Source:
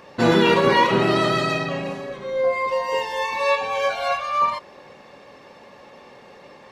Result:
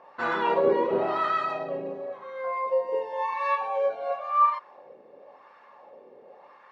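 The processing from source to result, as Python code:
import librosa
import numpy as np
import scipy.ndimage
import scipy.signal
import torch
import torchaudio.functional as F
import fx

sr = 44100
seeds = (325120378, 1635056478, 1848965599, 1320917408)

y = fx.wah_lfo(x, sr, hz=0.94, low_hz=420.0, high_hz=1300.0, q=2.3)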